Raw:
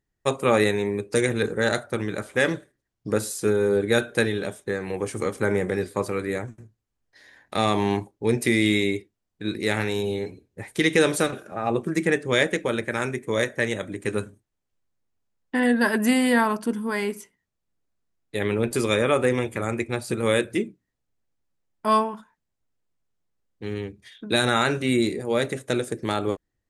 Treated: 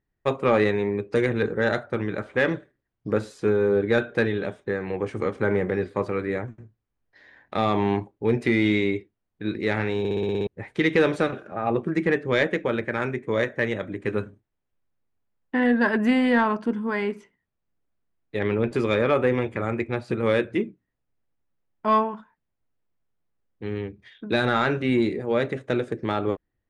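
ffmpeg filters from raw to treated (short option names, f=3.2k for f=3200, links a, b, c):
-filter_complex "[0:a]asplit=9[a][b][c][d][e][f][g][h][i];[a]atrim=end=10.052[j];[b]atrim=start=9.988:end=10.052[k];[c]atrim=start=9.988:end=10.052[l];[d]atrim=start=9.988:end=10.052[m];[e]atrim=start=9.988:end=10.052[n];[f]atrim=start=9.988:end=10.052[o];[g]atrim=start=9.988:end=10.052[p];[h]atrim=start=9.988:end=10.052[q];[i]atrim=start=10.468[r];[j][k]acrossfade=d=0.004:c1=hsin:c2=hsin[s];[s][l]acrossfade=d=0.004:c1=hsin:c2=hsin[t];[t][m]acrossfade=d=0.004:c1=hsin:c2=hsin[u];[u][n]acrossfade=d=0.004:c1=hsin:c2=hsin[v];[v][o]acrossfade=d=0.004:c1=hsin:c2=hsin[w];[w][p]acrossfade=d=0.004:c1=hsin:c2=hsin[x];[x][q]acrossfade=d=0.004:c1=hsin:c2=hsin[y];[y][r]acrossfade=d=0.004:c1=hsin:c2=hsin,lowpass=2.7k,acontrast=71,volume=-6dB"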